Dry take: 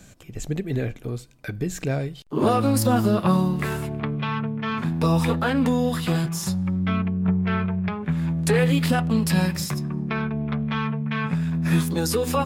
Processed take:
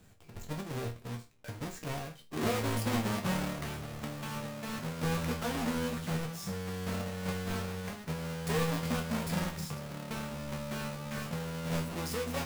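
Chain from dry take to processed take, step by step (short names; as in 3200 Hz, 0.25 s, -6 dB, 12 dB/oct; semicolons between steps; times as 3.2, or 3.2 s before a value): half-waves squared off; resonator bank D#2 major, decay 0.27 s; gain -4.5 dB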